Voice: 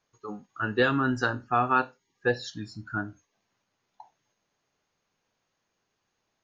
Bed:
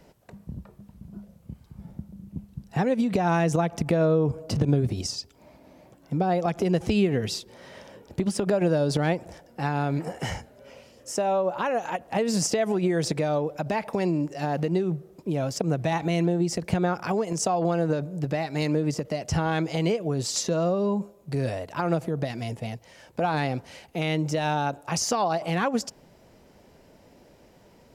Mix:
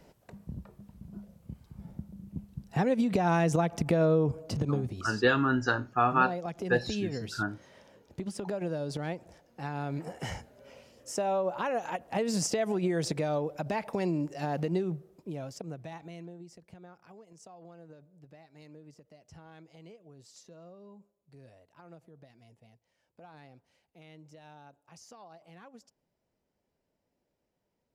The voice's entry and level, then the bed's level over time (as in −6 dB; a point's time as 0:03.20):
4.45 s, −1.0 dB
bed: 0:04.18 −3 dB
0:05.06 −11 dB
0:09.46 −11 dB
0:10.48 −5 dB
0:14.79 −5 dB
0:16.73 −27 dB